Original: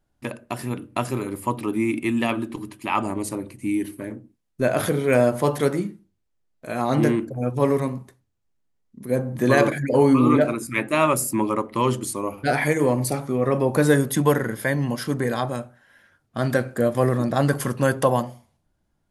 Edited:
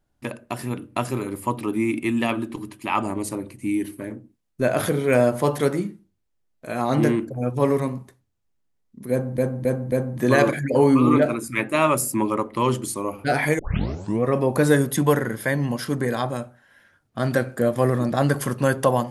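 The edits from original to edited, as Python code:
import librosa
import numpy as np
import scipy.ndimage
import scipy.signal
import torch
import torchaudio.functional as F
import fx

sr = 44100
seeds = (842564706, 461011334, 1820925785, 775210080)

y = fx.edit(x, sr, fx.repeat(start_s=9.11, length_s=0.27, count=4),
    fx.tape_start(start_s=12.78, length_s=0.64), tone=tone)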